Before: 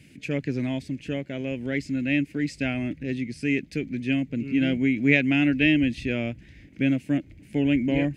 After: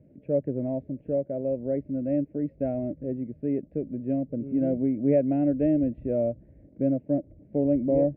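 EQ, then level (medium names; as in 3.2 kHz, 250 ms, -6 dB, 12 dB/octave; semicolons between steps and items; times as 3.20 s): resonant low-pass 590 Hz, resonance Q 5.8; distance through air 390 m; -4.0 dB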